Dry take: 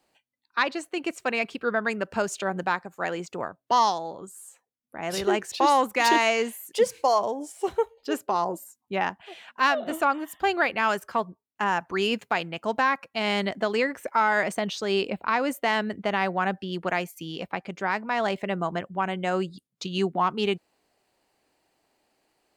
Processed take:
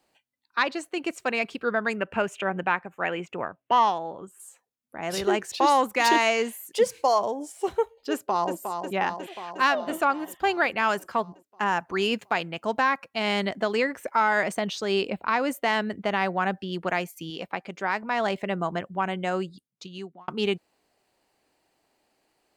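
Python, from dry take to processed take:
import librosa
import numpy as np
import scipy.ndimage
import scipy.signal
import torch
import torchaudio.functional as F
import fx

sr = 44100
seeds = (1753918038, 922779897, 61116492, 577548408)

y = fx.high_shelf_res(x, sr, hz=3500.0, db=-8.5, q=3.0, at=(1.99, 4.4))
y = fx.echo_throw(y, sr, start_s=8.11, length_s=0.43, ms=360, feedback_pct=70, wet_db=-6.5)
y = fx.low_shelf(y, sr, hz=140.0, db=-9.5, at=(17.3, 18.03))
y = fx.edit(y, sr, fx.fade_out_span(start_s=19.17, length_s=1.11), tone=tone)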